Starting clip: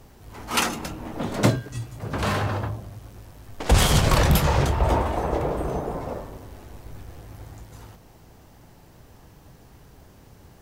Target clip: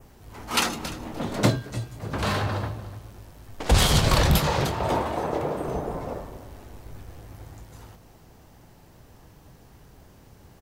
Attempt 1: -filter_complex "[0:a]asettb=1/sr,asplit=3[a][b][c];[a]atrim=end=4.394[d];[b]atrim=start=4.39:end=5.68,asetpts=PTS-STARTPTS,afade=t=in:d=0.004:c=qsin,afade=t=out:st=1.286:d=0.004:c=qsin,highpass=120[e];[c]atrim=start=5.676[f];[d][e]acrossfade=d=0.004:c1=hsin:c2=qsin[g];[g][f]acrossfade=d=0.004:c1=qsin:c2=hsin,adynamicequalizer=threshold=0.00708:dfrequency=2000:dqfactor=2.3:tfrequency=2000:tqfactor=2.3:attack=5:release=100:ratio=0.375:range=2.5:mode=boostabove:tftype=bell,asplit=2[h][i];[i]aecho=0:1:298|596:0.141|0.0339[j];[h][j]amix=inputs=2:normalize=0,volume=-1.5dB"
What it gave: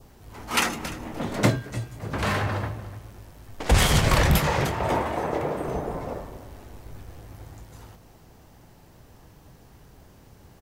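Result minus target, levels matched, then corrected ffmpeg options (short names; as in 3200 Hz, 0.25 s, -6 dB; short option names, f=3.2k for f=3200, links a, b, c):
2000 Hz band +2.5 dB
-filter_complex "[0:a]asettb=1/sr,asplit=3[a][b][c];[a]atrim=end=4.394[d];[b]atrim=start=4.39:end=5.68,asetpts=PTS-STARTPTS,afade=t=in:d=0.004:c=qsin,afade=t=out:st=1.286:d=0.004:c=qsin,highpass=120[e];[c]atrim=start=5.676[f];[d][e]acrossfade=d=0.004:c1=hsin:c2=qsin[g];[g][f]acrossfade=d=0.004:c1=qsin:c2=hsin,adynamicequalizer=threshold=0.00708:dfrequency=4100:dqfactor=2.3:tfrequency=4100:tqfactor=2.3:attack=5:release=100:ratio=0.375:range=2.5:mode=boostabove:tftype=bell,asplit=2[h][i];[i]aecho=0:1:298|596:0.141|0.0339[j];[h][j]amix=inputs=2:normalize=0,volume=-1.5dB"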